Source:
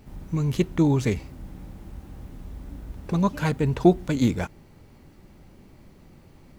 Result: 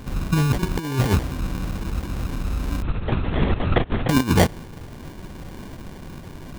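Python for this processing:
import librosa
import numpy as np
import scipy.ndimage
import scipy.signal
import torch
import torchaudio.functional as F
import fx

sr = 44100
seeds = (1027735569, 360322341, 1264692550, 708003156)

y = fx.over_compress(x, sr, threshold_db=-26.0, ratio=-0.5)
y = fx.sample_hold(y, sr, seeds[0], rate_hz=1300.0, jitter_pct=0)
y = fx.lpc_vocoder(y, sr, seeds[1], excitation='whisper', order=10, at=(2.82, 4.09))
y = y * librosa.db_to_amplitude(8.5)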